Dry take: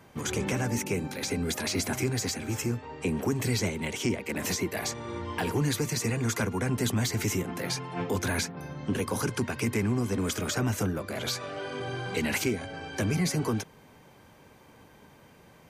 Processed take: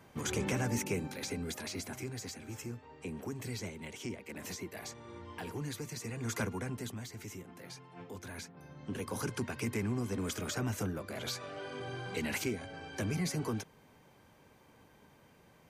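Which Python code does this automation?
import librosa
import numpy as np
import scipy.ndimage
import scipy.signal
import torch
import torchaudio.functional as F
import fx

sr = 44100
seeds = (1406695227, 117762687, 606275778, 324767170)

y = fx.gain(x, sr, db=fx.line((0.84, -4.0), (1.92, -12.5), (6.1, -12.5), (6.41, -5.5), (7.05, -17.0), (8.27, -17.0), (9.24, -7.0)))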